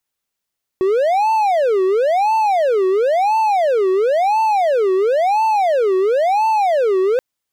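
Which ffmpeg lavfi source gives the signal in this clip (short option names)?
-f lavfi -i "aevalsrc='0.299*(1-4*abs(mod((630*t-257/(2*PI*0.97)*sin(2*PI*0.97*t))+0.25,1)-0.5))':d=6.38:s=44100"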